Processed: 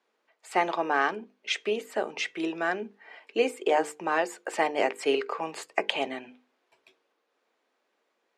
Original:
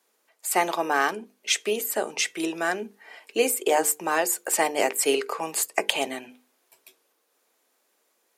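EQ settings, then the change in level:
low-pass filter 3,300 Hz 12 dB per octave
−2.0 dB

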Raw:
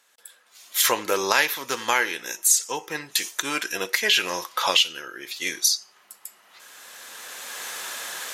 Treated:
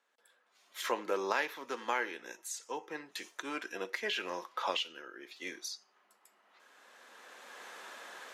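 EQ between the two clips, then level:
high-pass filter 200 Hz 24 dB per octave
high-shelf EQ 2,300 Hz −12 dB
high-shelf EQ 9,000 Hz −11.5 dB
−8.0 dB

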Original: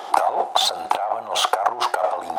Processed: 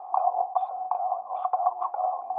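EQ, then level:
formant resonators in series a
0.0 dB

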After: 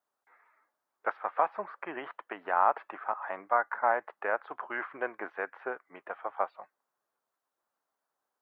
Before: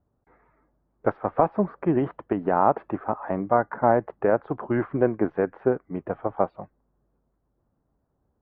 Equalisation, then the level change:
high-pass filter 1,300 Hz 12 dB per octave
+3.5 dB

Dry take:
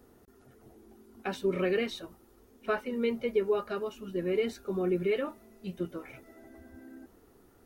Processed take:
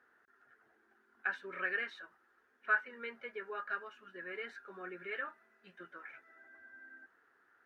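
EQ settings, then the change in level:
resonant band-pass 1,600 Hz, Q 7.6
+10.5 dB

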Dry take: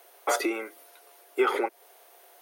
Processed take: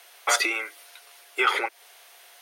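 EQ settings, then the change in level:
resonant band-pass 2,300 Hz, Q 0.72
high-shelf EQ 2,900 Hz +11.5 dB
+5.5 dB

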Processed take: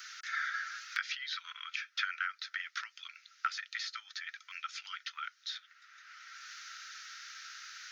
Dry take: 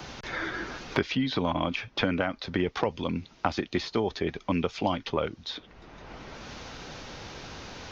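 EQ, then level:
Chebyshev high-pass with heavy ripple 1,300 Hz, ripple 3 dB
parametric band 3,200 Hz −9.5 dB 1.9 octaves
+5.5 dB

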